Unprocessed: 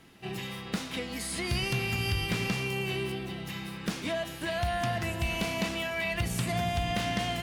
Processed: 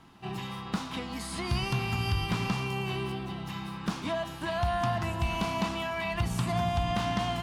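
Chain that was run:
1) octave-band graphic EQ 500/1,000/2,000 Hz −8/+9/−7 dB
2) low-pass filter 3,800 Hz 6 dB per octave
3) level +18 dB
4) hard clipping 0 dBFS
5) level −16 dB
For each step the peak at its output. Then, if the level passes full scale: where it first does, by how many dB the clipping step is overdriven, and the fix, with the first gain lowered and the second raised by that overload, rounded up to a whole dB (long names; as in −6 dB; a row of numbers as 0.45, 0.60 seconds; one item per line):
−19.0, −19.5, −1.5, −1.5, −17.5 dBFS
no step passes full scale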